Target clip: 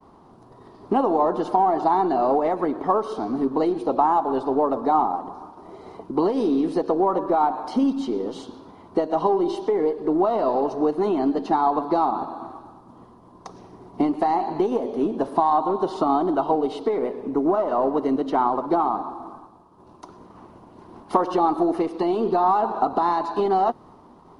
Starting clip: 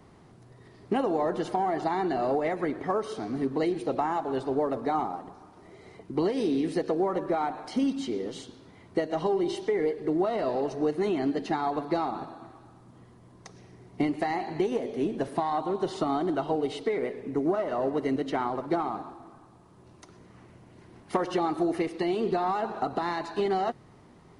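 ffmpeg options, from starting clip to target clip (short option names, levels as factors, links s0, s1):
-filter_complex "[0:a]agate=range=0.0224:threshold=0.00355:ratio=3:detection=peak,aeval=exprs='0.168*(cos(1*acos(clip(val(0)/0.168,-1,1)))-cos(1*PI/2))+0.00188*(cos(8*acos(clip(val(0)/0.168,-1,1)))-cos(8*PI/2))':c=same,asplit=2[s0][s1];[s1]acompressor=threshold=0.00794:ratio=6,volume=0.841[s2];[s0][s2]amix=inputs=2:normalize=0,equalizer=f=125:t=o:w=1:g=-8,equalizer=f=250:t=o:w=1:g=4,equalizer=f=1000:t=o:w=1:g=11,equalizer=f=2000:t=o:w=1:g=-11,equalizer=f=8000:t=o:w=1:g=-8,volume=1.26"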